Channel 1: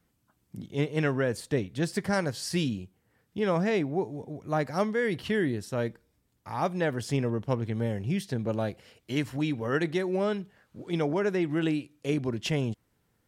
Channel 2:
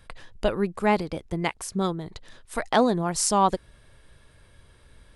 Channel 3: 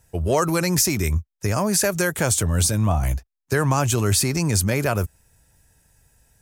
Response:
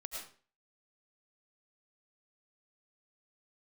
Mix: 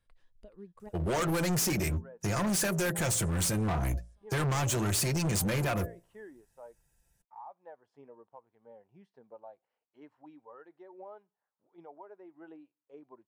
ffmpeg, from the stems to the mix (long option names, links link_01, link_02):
-filter_complex "[0:a]bandpass=frequency=900:width_type=q:width=2.6:csg=0,adelay=850,volume=-6dB[link_01];[1:a]acompressor=threshold=-27dB:ratio=6,volume=-12dB,asplit=3[link_02][link_03][link_04];[link_02]atrim=end=0.89,asetpts=PTS-STARTPTS,afade=type=out:start_time=0.886:duration=0.004:curve=hsin[link_05];[link_03]atrim=start=0.89:end=2.85,asetpts=PTS-STARTPTS,volume=0[link_06];[link_04]atrim=start=2.85,asetpts=PTS-STARTPTS,afade=type=in:duration=0.004:curve=hsin[link_07];[link_05][link_06][link_07]concat=n=3:v=0:a=1,asplit=2[link_08][link_09];[link_09]volume=-11.5dB[link_10];[2:a]aecho=1:1:5.8:0.43,bandreject=frequency=57.12:width_type=h:width=4,bandreject=frequency=114.24:width_type=h:width=4,bandreject=frequency=171.36:width_type=h:width=4,bandreject=frequency=228.48:width_type=h:width=4,bandreject=frequency=285.6:width_type=h:width=4,bandreject=frequency=342.72:width_type=h:width=4,bandreject=frequency=399.84:width_type=h:width=4,bandreject=frequency=456.96:width_type=h:width=4,bandreject=frequency=514.08:width_type=h:width=4,bandreject=frequency=571.2:width_type=h:width=4,bandreject=frequency=628.32:width_type=h:width=4,bandreject=frequency=685.44:width_type=h:width=4,acompressor=mode=upward:threshold=-52dB:ratio=2.5,adelay=800,volume=-3.5dB[link_11];[link_01][link_08]amix=inputs=2:normalize=0,alimiter=level_in=12.5dB:limit=-24dB:level=0:latency=1:release=419,volume=-12.5dB,volume=0dB[link_12];[link_10]aecho=0:1:423|846|1269|1692:1|0.24|0.0576|0.0138[link_13];[link_11][link_12][link_13]amix=inputs=3:normalize=0,afftdn=noise_reduction=12:noise_floor=-41,asoftclip=type=hard:threshold=-27dB"